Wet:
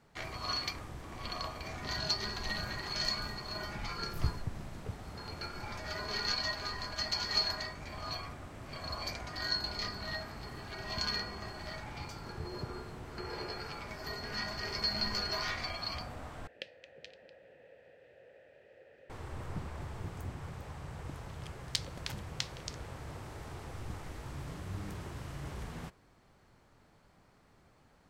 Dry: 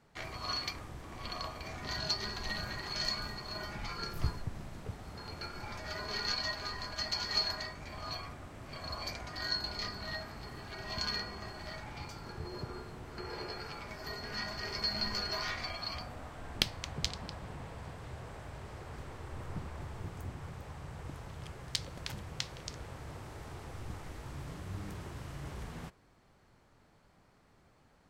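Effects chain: 16.47–19.10 s: vowel filter e; trim +1 dB

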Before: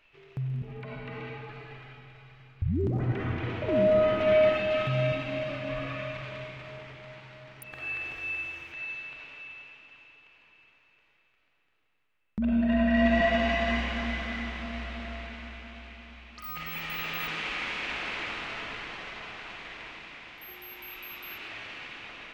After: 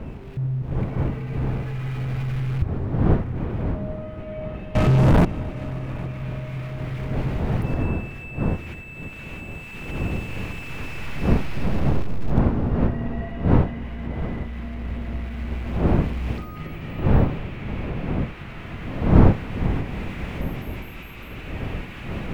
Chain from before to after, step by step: jump at every zero crossing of -34.5 dBFS; recorder AGC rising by 29 dB/s; wind noise 570 Hz -18 dBFS; tone controls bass +14 dB, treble -13 dB; 4.75–5.25 s: waveshaping leveller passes 5; on a send: multi-head delay 270 ms, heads all three, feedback 49%, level -22 dB; on the sum: trim -16 dB

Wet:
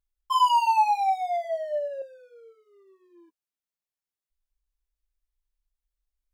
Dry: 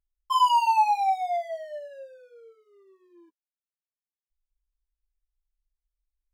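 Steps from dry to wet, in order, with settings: 1.44–2.02 s: peaking EQ 570 Hz +10 dB 0.38 oct

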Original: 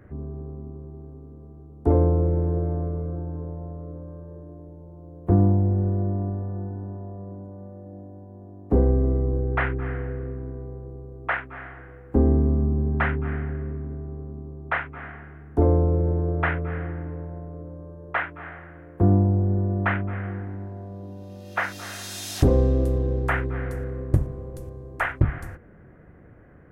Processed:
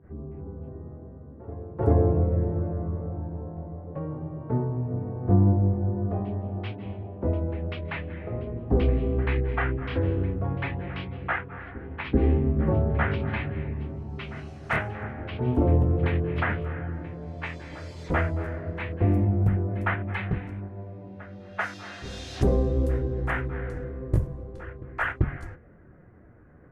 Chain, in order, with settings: ever faster or slower copies 309 ms, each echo +4 st, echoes 2, each echo -6 dB; granulator 147 ms, grains 20 per s, spray 17 ms, pitch spread up and down by 0 st; reverse echo 389 ms -18.5 dB; level-controlled noise filter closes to 2 kHz, open at -23 dBFS

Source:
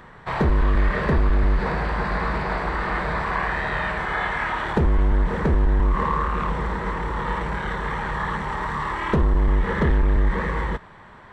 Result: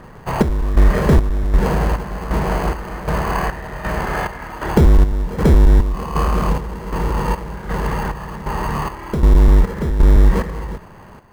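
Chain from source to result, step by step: low-pass 1 kHz 6 dB/octave; in parallel at -6.5 dB: sample-and-hold 24×; on the sum: square tremolo 1.3 Hz, depth 65%, duty 55%; trim +5.5 dB

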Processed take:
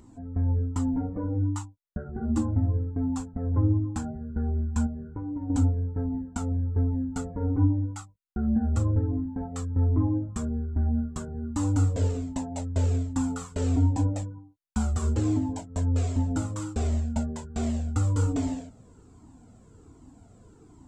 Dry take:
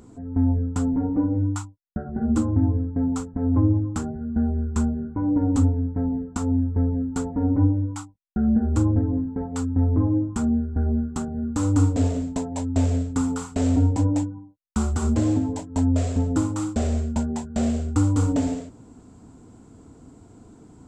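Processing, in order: 4.86–5.50 s: compression 12:1, threshold -26 dBFS, peak gain reduction 10 dB; Shepard-style flanger falling 1.3 Hz

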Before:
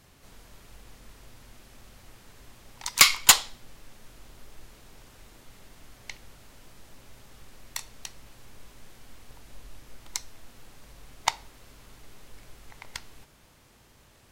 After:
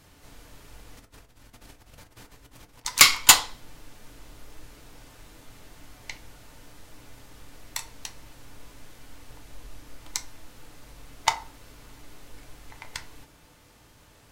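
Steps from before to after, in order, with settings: 0.97–2.85 s: compressor with a negative ratio -53 dBFS, ratio -0.5; FDN reverb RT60 0.37 s, low-frequency decay 0.9×, high-frequency decay 0.5×, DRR 5 dB; trim +1.5 dB

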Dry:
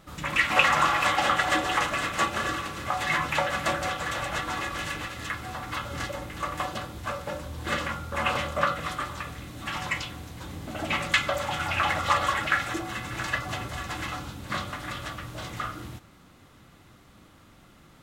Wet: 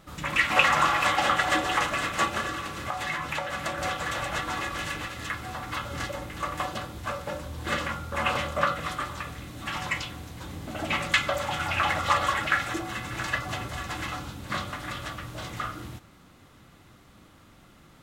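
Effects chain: 2.40–3.78 s: compression 5:1, threshold -28 dBFS, peak gain reduction 7.5 dB

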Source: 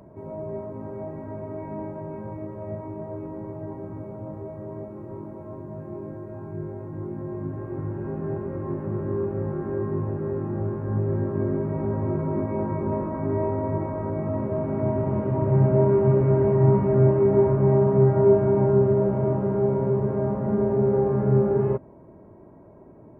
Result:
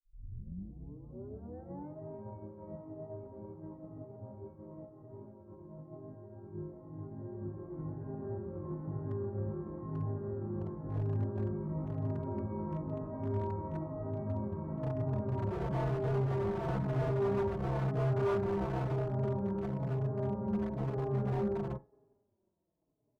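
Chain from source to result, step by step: tape start-up on the opening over 1.96 s; low-pass 1.1 kHz 12 dB/octave; on a send: thinning echo 91 ms, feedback 84%, high-pass 340 Hz, level -16.5 dB; on the sum: dynamic bell 430 Hz, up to -7 dB, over -33 dBFS, Q 0.75; in parallel at -1.5 dB: compression 8:1, threshold -36 dBFS, peak gain reduction 20 dB; on the sum: expander -25 dBFS; wavefolder -19 dBFS; endless flanger 4.3 ms -1 Hz; trim -5.5 dB

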